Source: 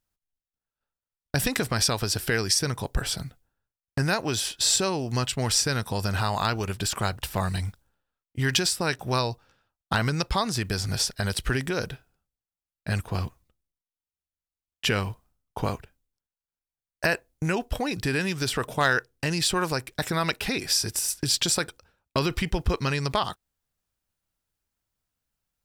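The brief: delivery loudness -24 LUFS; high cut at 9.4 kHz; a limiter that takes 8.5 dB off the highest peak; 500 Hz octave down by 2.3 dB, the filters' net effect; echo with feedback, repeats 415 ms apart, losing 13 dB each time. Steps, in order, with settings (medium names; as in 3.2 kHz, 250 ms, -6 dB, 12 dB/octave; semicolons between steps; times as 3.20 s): low-pass 9.4 kHz; peaking EQ 500 Hz -3 dB; peak limiter -18 dBFS; feedback delay 415 ms, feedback 22%, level -13 dB; trim +5.5 dB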